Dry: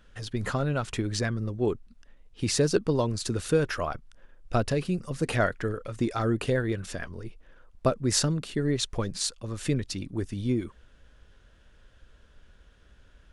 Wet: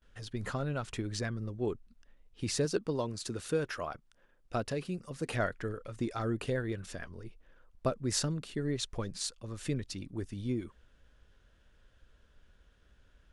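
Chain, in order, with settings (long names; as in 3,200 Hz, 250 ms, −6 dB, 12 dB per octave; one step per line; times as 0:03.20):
noise gate with hold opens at −51 dBFS
0:02.65–0:05.33: low-shelf EQ 87 Hz −11 dB
level −7 dB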